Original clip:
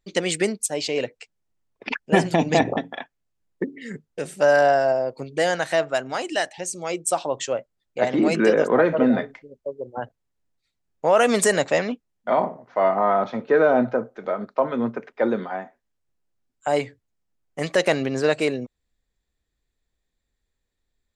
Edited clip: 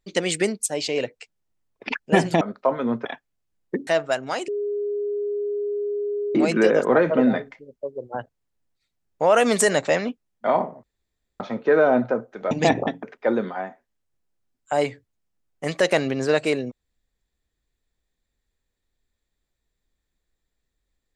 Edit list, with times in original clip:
0:02.41–0:02.93: swap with 0:14.34–0:14.98
0:03.75–0:05.70: remove
0:06.31–0:08.18: beep over 411 Hz −23 dBFS
0:12.66–0:13.23: fill with room tone

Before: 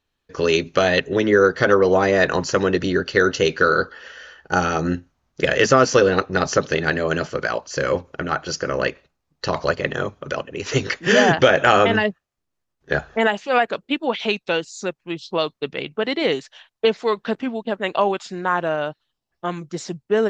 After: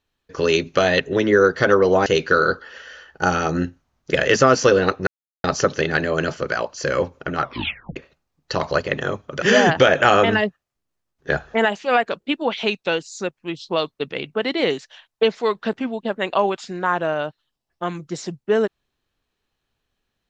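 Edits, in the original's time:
0:02.06–0:03.36: remove
0:06.37: splice in silence 0.37 s
0:08.33: tape stop 0.56 s
0:10.35–0:11.04: remove

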